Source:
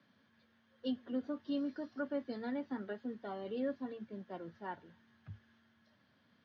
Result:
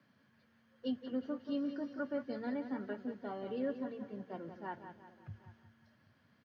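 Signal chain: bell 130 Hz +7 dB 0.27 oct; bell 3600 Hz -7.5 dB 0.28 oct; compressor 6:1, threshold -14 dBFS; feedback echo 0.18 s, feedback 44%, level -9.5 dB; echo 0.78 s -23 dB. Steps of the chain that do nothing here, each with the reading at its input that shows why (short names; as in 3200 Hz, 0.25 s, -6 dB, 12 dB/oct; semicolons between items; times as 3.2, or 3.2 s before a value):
compressor, threshold -14 dBFS: input peak -27.0 dBFS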